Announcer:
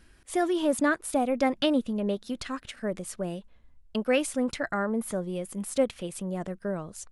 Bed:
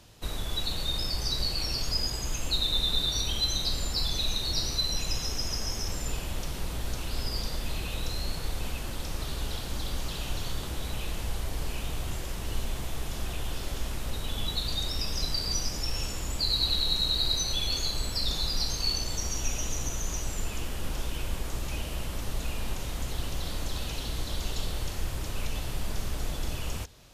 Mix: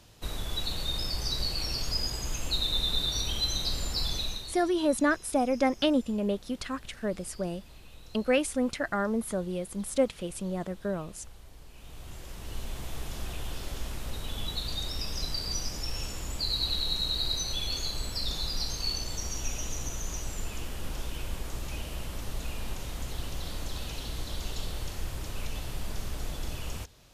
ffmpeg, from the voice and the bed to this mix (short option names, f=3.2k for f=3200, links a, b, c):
-filter_complex "[0:a]adelay=4200,volume=-0.5dB[a];[1:a]volume=13.5dB,afade=t=out:st=4.12:d=0.45:silence=0.149624,afade=t=in:st=11.72:d=1.24:silence=0.177828[b];[a][b]amix=inputs=2:normalize=0"